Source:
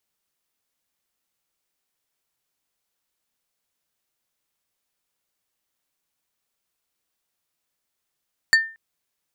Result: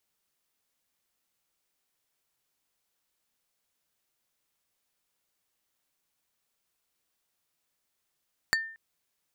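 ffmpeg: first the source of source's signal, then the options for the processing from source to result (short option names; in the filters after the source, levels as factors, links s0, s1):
-f lavfi -i "aevalsrc='0.355*pow(10,-3*t/0.35)*sin(2*PI*1800*t)+0.178*pow(10,-3*t/0.117)*sin(2*PI*4500*t)+0.0891*pow(10,-3*t/0.066)*sin(2*PI*7200*t)+0.0447*pow(10,-3*t/0.051)*sin(2*PI*9000*t)+0.0224*pow(10,-3*t/0.037)*sin(2*PI*11700*t)':d=0.23:s=44100"
-af "acompressor=threshold=0.0562:ratio=12"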